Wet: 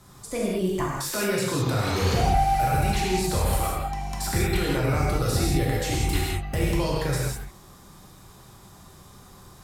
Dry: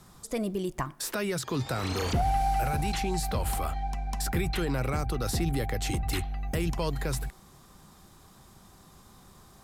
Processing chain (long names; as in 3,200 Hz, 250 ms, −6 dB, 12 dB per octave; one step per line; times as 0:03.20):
reverb whose tail is shaped and stops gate 220 ms flat, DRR −4.5 dB